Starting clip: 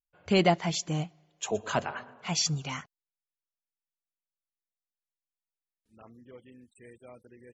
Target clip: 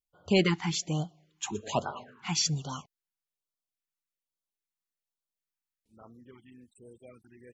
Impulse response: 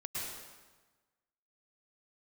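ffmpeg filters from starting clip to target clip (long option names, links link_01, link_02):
-af "afftfilt=real='re*(1-between(b*sr/1024,500*pow(2200/500,0.5+0.5*sin(2*PI*1.2*pts/sr))/1.41,500*pow(2200/500,0.5+0.5*sin(2*PI*1.2*pts/sr))*1.41))':imag='im*(1-between(b*sr/1024,500*pow(2200/500,0.5+0.5*sin(2*PI*1.2*pts/sr))/1.41,500*pow(2200/500,0.5+0.5*sin(2*PI*1.2*pts/sr))*1.41))':win_size=1024:overlap=0.75"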